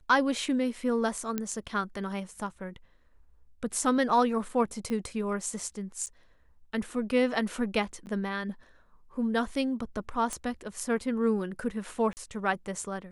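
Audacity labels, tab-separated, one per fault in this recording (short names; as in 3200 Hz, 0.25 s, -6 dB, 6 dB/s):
1.380000	1.380000	pop -16 dBFS
4.900000	4.900000	pop -22 dBFS
6.060000	6.070000	gap 8.6 ms
8.060000	8.070000	gap 9.6 ms
10.330000	10.330000	pop -20 dBFS
12.130000	12.170000	gap 39 ms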